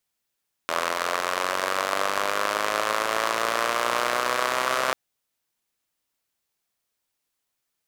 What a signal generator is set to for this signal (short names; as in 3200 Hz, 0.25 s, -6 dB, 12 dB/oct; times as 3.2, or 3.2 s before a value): four-cylinder engine model, changing speed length 4.24 s, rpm 2500, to 3900, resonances 610/1100 Hz